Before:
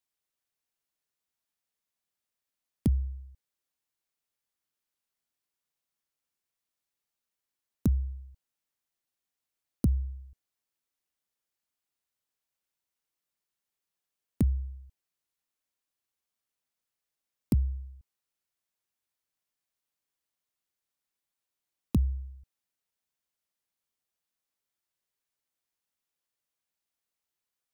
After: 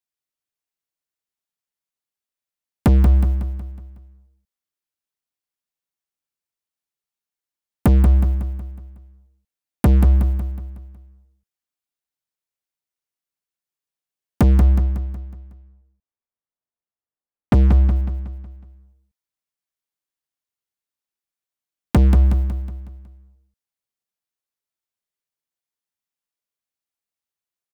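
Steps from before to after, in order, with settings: 14.45–17.96 s: low-pass 1.3 kHz; waveshaping leveller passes 5; feedback delay 184 ms, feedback 47%, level -7 dB; trim +5.5 dB

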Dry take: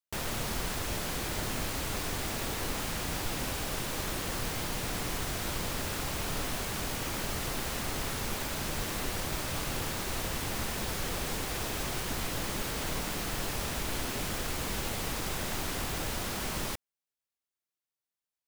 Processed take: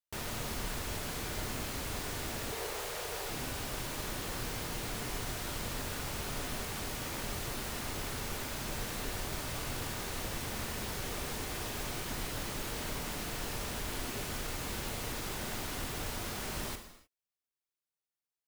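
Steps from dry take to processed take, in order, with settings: 2.52–3.29 s: resonant low shelf 340 Hz -8.5 dB, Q 3; gated-style reverb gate 330 ms falling, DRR 6 dB; trim -5 dB

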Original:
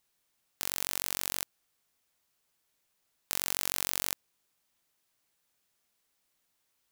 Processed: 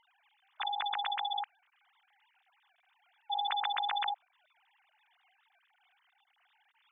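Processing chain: formants replaced by sine waves

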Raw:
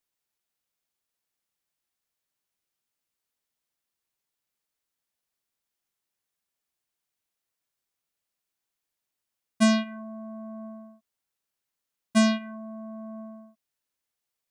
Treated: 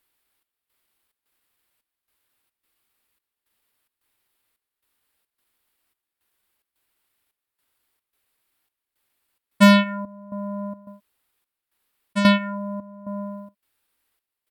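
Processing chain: trance gate "xxx..xxx.x" 109 bpm -12 dB; in parallel at -6 dB: sine folder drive 6 dB, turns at -10 dBFS; on the sum: pitch shift -1.5 st; fifteen-band graphic EQ 160 Hz -9 dB, 630 Hz -4 dB, 6.3 kHz -12 dB; trim +5.5 dB

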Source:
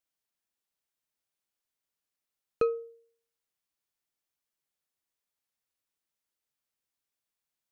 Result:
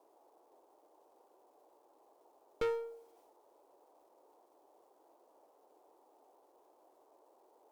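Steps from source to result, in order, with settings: companding laws mixed up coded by mu; valve stage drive 31 dB, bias 0.65; band noise 320–940 Hz -68 dBFS; trim +1 dB

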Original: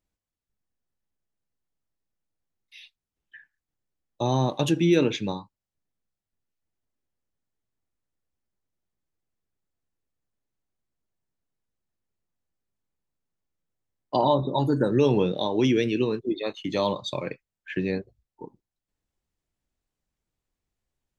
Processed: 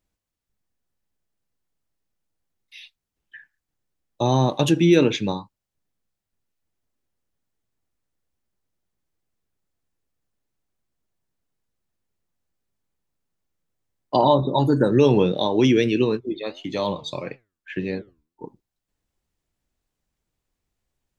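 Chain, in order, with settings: 16.17–18.44 s: flange 1.7 Hz, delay 6.9 ms, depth 6.9 ms, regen +82%; trim +4.5 dB

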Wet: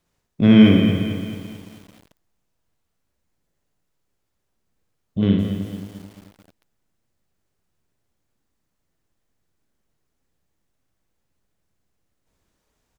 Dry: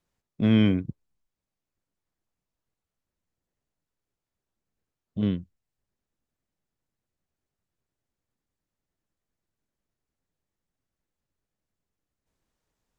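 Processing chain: reverse bouncing-ball echo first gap 60 ms, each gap 1.2×, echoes 5; bit-crushed delay 220 ms, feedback 55%, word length 8-bit, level -9 dB; trim +7 dB

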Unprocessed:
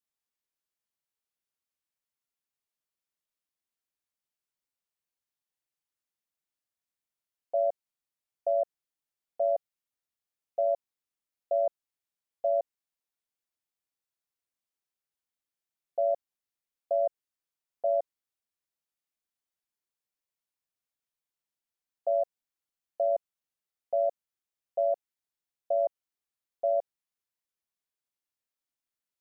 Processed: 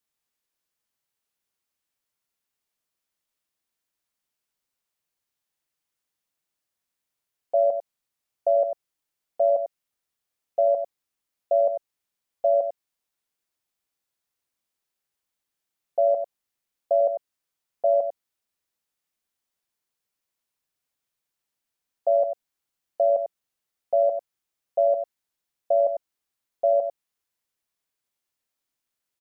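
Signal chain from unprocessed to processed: delay 97 ms -8.5 dB; trim +6.5 dB

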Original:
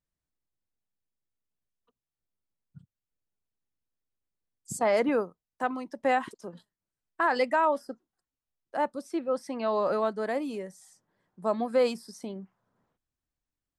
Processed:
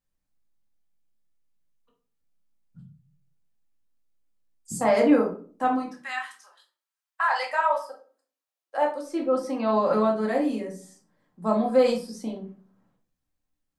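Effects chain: 5.87–9.01 s: high-pass 1.5 kHz -> 360 Hz 24 dB/octave; reverberation RT60 0.45 s, pre-delay 4 ms, DRR -1 dB

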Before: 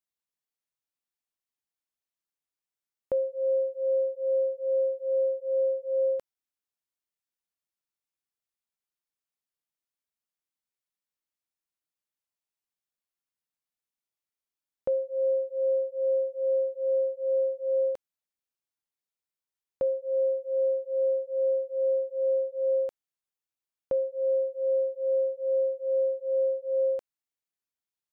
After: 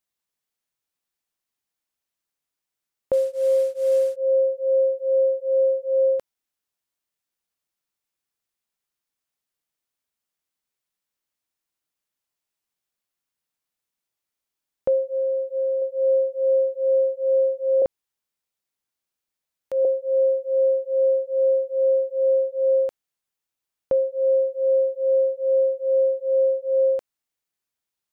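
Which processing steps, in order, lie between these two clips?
3.13–4.16 s: CVSD coder 64 kbps; 15.11–15.82 s: compression, threshold -28 dBFS, peak gain reduction 5 dB; 17.82–19.85 s: reverse; trim +6.5 dB

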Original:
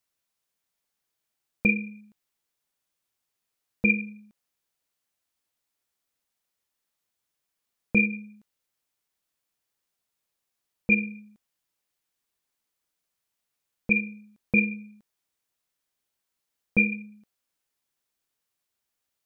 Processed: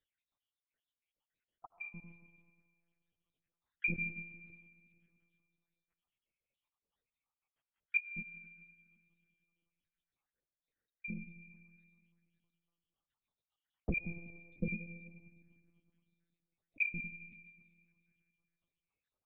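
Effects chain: random holes in the spectrogram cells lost 80%; compression, threshold -32 dBFS, peak gain reduction 13 dB; on a send at -10.5 dB: reverberation RT60 2.3 s, pre-delay 55 ms; on the sum: monotone LPC vocoder at 8 kHz 170 Hz; trim +1 dB

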